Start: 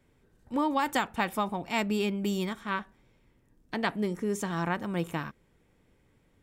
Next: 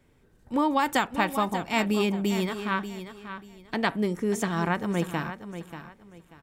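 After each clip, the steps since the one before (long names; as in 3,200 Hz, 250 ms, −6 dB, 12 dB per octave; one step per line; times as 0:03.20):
repeating echo 587 ms, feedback 26%, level −11 dB
level +3.5 dB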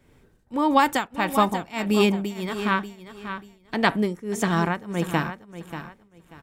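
shaped tremolo triangle 1.6 Hz, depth 90%
level +7 dB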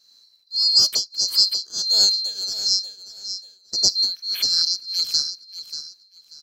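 neighbouring bands swapped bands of 4,000 Hz
level +2 dB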